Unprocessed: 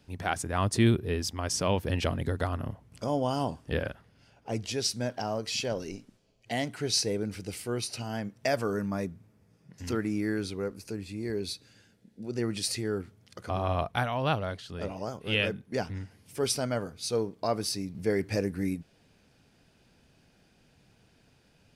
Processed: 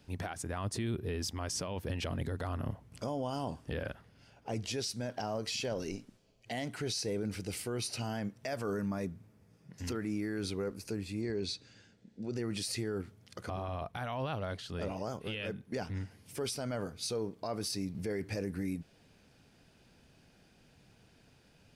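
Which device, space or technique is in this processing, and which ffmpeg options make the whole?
stacked limiters: -filter_complex "[0:a]alimiter=limit=-19dB:level=0:latency=1:release=297,alimiter=limit=-22.5dB:level=0:latency=1:release=194,alimiter=level_in=3.5dB:limit=-24dB:level=0:latency=1:release=19,volume=-3.5dB,asettb=1/sr,asplit=3[a][b][c];[a]atrim=end=11.214[d];[b]atrim=start=11.21:end=12.36,asetpts=PTS-STARTPTS,afade=t=in:d=0.004:c=qsin,afade=t=out:st=1.146:d=0.004:c=qsin,lowpass=f=7.6k:w=0.5412,lowpass=f=7.6k:w=1.3066[e];[c]atrim=start=12.356[f];[d][e]acrossfade=d=0.004:c1=hsin:c2=qsin[g];[g][f]acrossfade=d=0.004:c1=qsin:c2=hsin"

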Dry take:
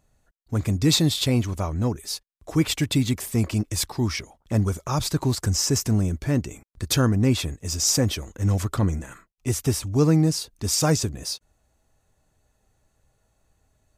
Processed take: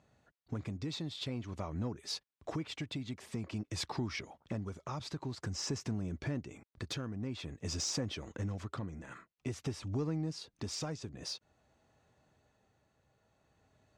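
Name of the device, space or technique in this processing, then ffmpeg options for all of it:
AM radio: -af "highpass=110,lowpass=4.3k,acompressor=threshold=-35dB:ratio=6,asoftclip=type=tanh:threshold=-24.5dB,tremolo=f=0.5:d=0.37,volume=1.5dB"

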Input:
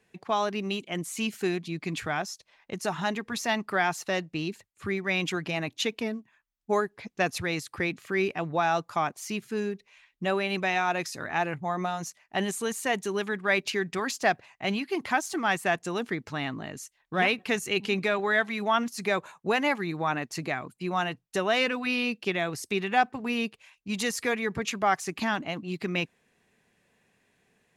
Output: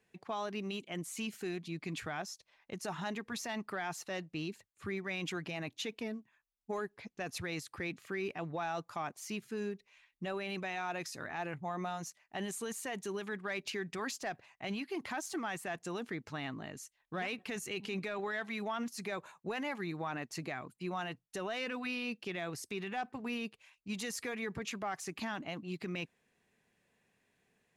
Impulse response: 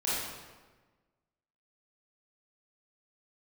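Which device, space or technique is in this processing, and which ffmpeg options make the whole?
soft clipper into limiter: -af "asoftclip=type=tanh:threshold=-13.5dB,alimiter=limit=-22.5dB:level=0:latency=1:release=26,volume=-7dB"

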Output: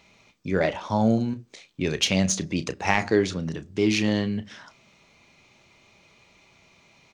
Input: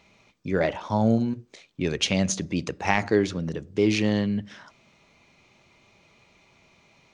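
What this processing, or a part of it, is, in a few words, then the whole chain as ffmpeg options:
exciter from parts: -filter_complex "[0:a]asplit=2[a][b];[b]highpass=f=3.1k:p=1,asoftclip=type=tanh:threshold=-23.5dB,volume=-5dB[c];[a][c]amix=inputs=2:normalize=0,asettb=1/sr,asplit=3[d][e][f];[d]atrim=end=3.464[g];[e]atrim=start=3.46:end=4.08,asetpts=PTS-STARTPTS,afade=t=in:d=0.004:c=qsin,afade=t=out:st=0.616:d=0.004:c=qsin,equalizer=f=490:w=4.3:g=-9.5[h];[f]atrim=start=4.076[i];[g][h]acrossfade=d=0.004:c1=hsin:c2=qsin[j];[j][i]acrossfade=d=0.004:c1=qsin:c2=hsin,asplit=2[k][l];[l]adelay=32,volume=-12.5dB[m];[k][m]amix=inputs=2:normalize=0"

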